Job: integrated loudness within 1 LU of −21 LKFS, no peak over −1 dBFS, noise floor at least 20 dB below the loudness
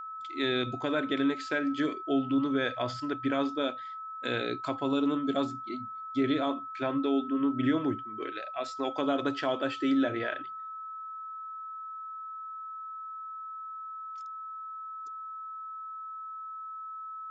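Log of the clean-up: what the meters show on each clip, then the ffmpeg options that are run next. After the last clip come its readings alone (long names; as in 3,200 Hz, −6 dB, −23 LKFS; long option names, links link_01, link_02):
interfering tone 1,300 Hz; level of the tone −38 dBFS; integrated loudness −32.5 LKFS; sample peak −15.5 dBFS; target loudness −21.0 LKFS
→ -af "bandreject=frequency=1300:width=30"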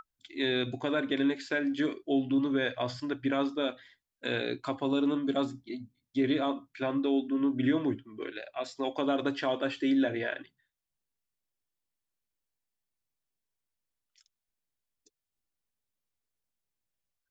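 interfering tone none found; integrated loudness −31.0 LKFS; sample peak −16.5 dBFS; target loudness −21.0 LKFS
→ -af "volume=10dB"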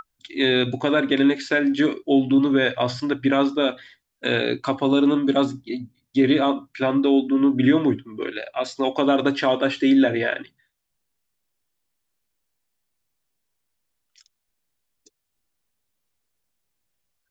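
integrated loudness −21.0 LKFS; sample peak −6.5 dBFS; background noise floor −78 dBFS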